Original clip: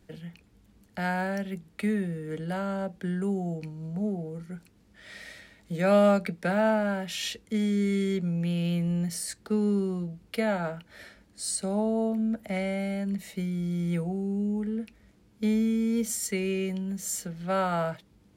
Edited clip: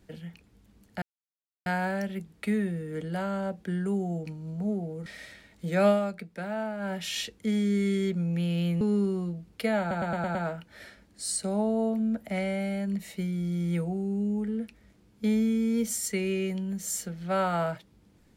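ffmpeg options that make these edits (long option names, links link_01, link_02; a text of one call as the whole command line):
ffmpeg -i in.wav -filter_complex "[0:a]asplit=11[link_01][link_02][link_03][link_04][link_05][link_06][link_07][link_08][link_09][link_10][link_11];[link_01]atrim=end=1.02,asetpts=PTS-STARTPTS,afade=type=out:start_time=1.016:duration=0.004:curve=hsin,apad=pad_dur=0.64[link_12];[link_02]atrim=start=1.02:end=4.422,asetpts=PTS-STARTPTS,afade=type=in:duration=0.004:curve=hsin[link_13];[link_03]atrim=start=5.128:end=6.07,asetpts=PTS-STARTPTS,afade=type=out:start_time=0.812:duration=0.13:silence=0.375837[link_14];[link_04]atrim=start=6.07:end=6.86,asetpts=PTS-STARTPTS,volume=-8.5dB[link_15];[link_05]atrim=start=6.86:end=8.882,asetpts=PTS-STARTPTS,afade=type=in:duration=0.13:silence=0.375837[link_16];[link_06]atrim=start=9.548:end=10.652[link_17];[link_07]atrim=start=10.538:end=10.652[link_18];[link_08]atrim=start=10.538:end=10.652[link_19];[link_09]atrim=start=10.538:end=10.652[link_20];[link_10]atrim=start=10.538:end=10.652[link_21];[link_11]atrim=start=10.538[link_22];[link_12][link_13]concat=n=2:v=0:a=1[link_23];[link_14][link_15][link_16]concat=n=3:v=0:a=1[link_24];[link_23][link_24]acrossfade=duration=0.004:curve1=hsin:curve2=hsin[link_25];[link_25][link_17]acrossfade=duration=0.004:curve1=hsin:curve2=hsin[link_26];[link_26][link_18]acrossfade=duration=0.004:curve1=hsin:curve2=hsin[link_27];[link_27][link_19]acrossfade=duration=0.004:curve1=hsin:curve2=hsin[link_28];[link_28][link_20]acrossfade=duration=0.004:curve1=hsin:curve2=hsin[link_29];[link_29][link_21]acrossfade=duration=0.004:curve1=hsin:curve2=hsin[link_30];[link_30][link_22]acrossfade=duration=0.004:curve1=hsin:curve2=hsin" out.wav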